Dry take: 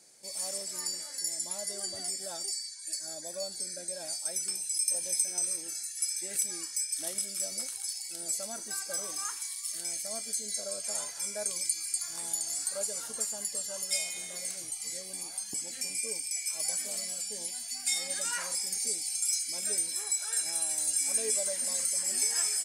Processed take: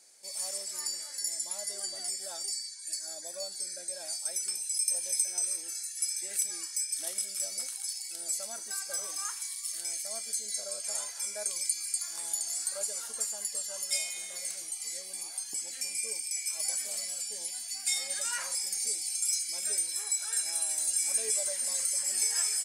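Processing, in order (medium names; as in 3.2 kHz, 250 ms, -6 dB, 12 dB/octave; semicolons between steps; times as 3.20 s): high-pass 280 Hz 6 dB/octave; bass shelf 410 Hz -8 dB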